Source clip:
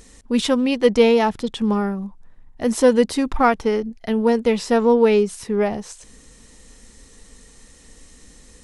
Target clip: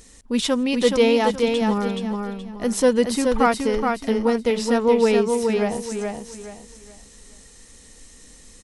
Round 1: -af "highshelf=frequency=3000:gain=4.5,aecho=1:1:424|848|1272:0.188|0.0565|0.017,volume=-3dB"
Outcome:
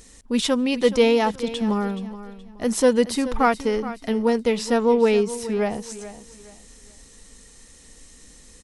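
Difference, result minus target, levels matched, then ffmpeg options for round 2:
echo-to-direct −10 dB
-af "highshelf=frequency=3000:gain=4.5,aecho=1:1:424|848|1272|1696:0.596|0.179|0.0536|0.0161,volume=-3dB"

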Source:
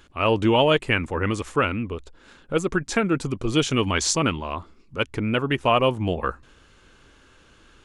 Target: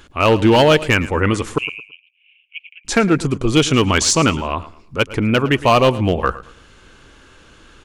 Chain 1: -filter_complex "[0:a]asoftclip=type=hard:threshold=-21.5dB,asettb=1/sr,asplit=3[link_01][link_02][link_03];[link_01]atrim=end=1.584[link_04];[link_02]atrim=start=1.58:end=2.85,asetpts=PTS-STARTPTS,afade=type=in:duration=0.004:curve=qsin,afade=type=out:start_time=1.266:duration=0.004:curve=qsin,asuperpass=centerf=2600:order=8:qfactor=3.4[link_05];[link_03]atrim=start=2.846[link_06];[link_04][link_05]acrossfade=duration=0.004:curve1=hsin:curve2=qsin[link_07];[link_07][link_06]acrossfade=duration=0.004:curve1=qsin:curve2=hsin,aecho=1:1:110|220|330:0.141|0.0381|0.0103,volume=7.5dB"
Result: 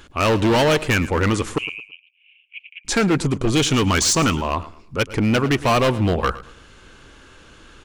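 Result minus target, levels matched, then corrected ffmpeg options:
hard clipping: distortion +9 dB
-filter_complex "[0:a]asoftclip=type=hard:threshold=-14dB,asettb=1/sr,asplit=3[link_01][link_02][link_03];[link_01]atrim=end=1.584[link_04];[link_02]atrim=start=1.58:end=2.85,asetpts=PTS-STARTPTS,afade=type=in:duration=0.004:curve=qsin,afade=type=out:start_time=1.266:duration=0.004:curve=qsin,asuperpass=centerf=2600:order=8:qfactor=3.4[link_05];[link_03]atrim=start=2.846[link_06];[link_04][link_05]acrossfade=duration=0.004:curve1=hsin:curve2=qsin[link_07];[link_07][link_06]acrossfade=duration=0.004:curve1=qsin:curve2=hsin,aecho=1:1:110|220|330:0.141|0.0381|0.0103,volume=7.5dB"

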